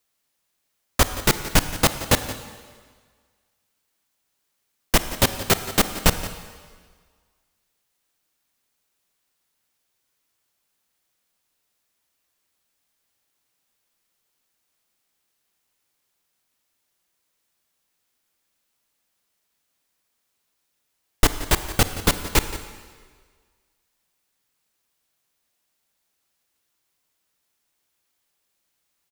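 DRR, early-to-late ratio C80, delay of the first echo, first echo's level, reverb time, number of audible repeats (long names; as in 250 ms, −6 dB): 9.5 dB, 11.0 dB, 174 ms, −15.5 dB, 1.7 s, 1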